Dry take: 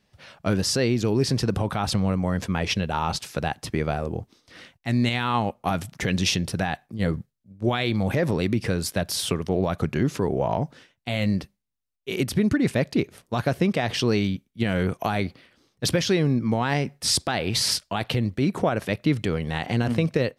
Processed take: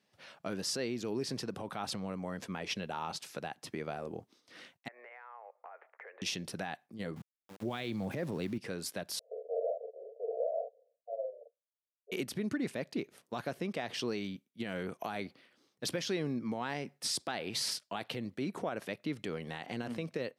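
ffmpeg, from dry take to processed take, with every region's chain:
ffmpeg -i in.wav -filter_complex "[0:a]asettb=1/sr,asplit=3[link_01][link_02][link_03];[link_01]atrim=end=4.884[link_04];[link_02]atrim=start=4.88:end=6.22,asetpts=PTS-STARTPTS,afade=type=in:duration=0.004:curve=qsin,afade=type=out:start_time=1.336:duration=0.004:curve=qsin,asuperpass=centerf=990:order=12:qfactor=0.58,acompressor=threshold=-41dB:ratio=6:attack=3.2:release=140:knee=1:detection=peak[link_05];[link_03]atrim=start=6.216[link_06];[link_04][link_05]acrossfade=duration=0.004:curve1=hsin:curve2=qsin[link_07];[link_07][link_06]acrossfade=duration=0.004:curve1=qsin:curve2=hsin,asettb=1/sr,asplit=3[link_08][link_09][link_10];[link_08]atrim=end=7.164[link_11];[link_09]atrim=start=7.16:end=8.58,asetpts=PTS-STARTPTS,afade=type=in:duration=0.004:curve=qsin,afade=type=out:start_time=1.416:duration=0.004:curve=qsin,highpass=frequency=70:width=0.5412,highpass=frequency=70:width=1.3066,lowshelf=frequency=210:gain=10.5,aeval=exprs='val(0)*gte(abs(val(0)),0.015)':channel_layout=same[link_12];[link_10]atrim=start=8.576[link_13];[link_11][link_12]acrossfade=duration=0.004:curve1=hsin:curve2=qsin[link_14];[link_14][link_13]acrossfade=duration=0.004:curve1=qsin:curve2=hsin,asettb=1/sr,asplit=3[link_15][link_16][link_17];[link_15]atrim=end=9.194[link_18];[link_16]atrim=start=9.19:end=12.12,asetpts=PTS-STARTPTS,afade=type=in:duration=0.004:curve=qsin,afade=type=out:start_time=2.926:duration=0.004:curve=qsin,asuperpass=centerf=560:order=12:qfactor=2.2,asplit=2[link_19][link_20];[link_20]adelay=44,volume=-2.5dB[link_21];[link_19][link_21]amix=inputs=2:normalize=0,atrim=end_sample=129213[link_22];[link_17]atrim=start=12.116[link_23];[link_18][link_22]acrossfade=duration=0.004:curve1=hsin:curve2=qsin[link_24];[link_24][link_23]acrossfade=duration=0.004:curve1=qsin:curve2=hsin,alimiter=limit=-17.5dB:level=0:latency=1:release=495,highpass=210,volume=-6.5dB" out.wav

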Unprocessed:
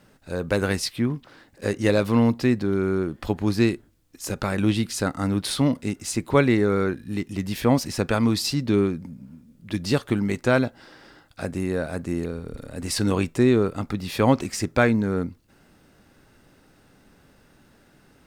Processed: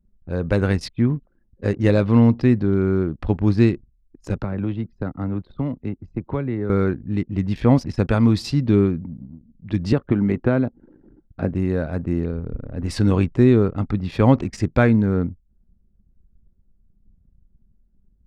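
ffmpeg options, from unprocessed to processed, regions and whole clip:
ffmpeg -i in.wav -filter_complex "[0:a]asettb=1/sr,asplit=3[link_01][link_02][link_03];[link_01]atrim=end=4.414[link_04];[link_02]atrim=start=4.41:end=6.7,asetpts=PTS-STARTPTS,afade=type=in:duration=0.004:curve=qsin,afade=type=out:start_time=2.286:duration=0.004:curve=qsin,equalizer=frequency=9300:width=0.5:gain=-8.5,acrossover=split=95|430|1100[link_05][link_06][link_07][link_08];[link_05]acompressor=threshold=-46dB:ratio=3[link_09];[link_06]acompressor=threshold=-32dB:ratio=3[link_10];[link_07]acompressor=threshold=-36dB:ratio=3[link_11];[link_08]acompressor=threshold=-43dB:ratio=3[link_12];[link_09][link_10][link_11][link_12]amix=inputs=4:normalize=0[link_13];[link_03]atrim=start=6.696[link_14];[link_04][link_13]acrossfade=duration=0.004:curve1=hsin:curve2=qsin[link_15];[link_15][link_14]acrossfade=duration=0.004:curve1=qsin:curve2=hsin,asettb=1/sr,asplit=3[link_16][link_17][link_18];[link_16]atrim=end=9.924[link_19];[link_17]atrim=start=9.92:end=11.49,asetpts=PTS-STARTPTS,afade=type=in:duration=0.004:curve=qsin,afade=type=out:start_time=1.566:duration=0.004:curve=qsin,equalizer=frequency=270:width_type=o:width=2.1:gain=6.5,acrossover=split=510|2800[link_20][link_21][link_22];[link_20]acompressor=threshold=-22dB:ratio=4[link_23];[link_21]acompressor=threshold=-24dB:ratio=4[link_24];[link_22]acompressor=threshold=-53dB:ratio=4[link_25];[link_23][link_24][link_25]amix=inputs=3:normalize=0[link_26];[link_18]atrim=start=11.486[link_27];[link_19][link_26]acrossfade=duration=0.004:curve1=hsin:curve2=qsin[link_28];[link_28][link_27]acrossfade=duration=0.004:curve1=qsin:curve2=hsin,aemphasis=mode=reproduction:type=bsi,anlmdn=2.51,lowshelf=frequency=70:gain=-6" out.wav

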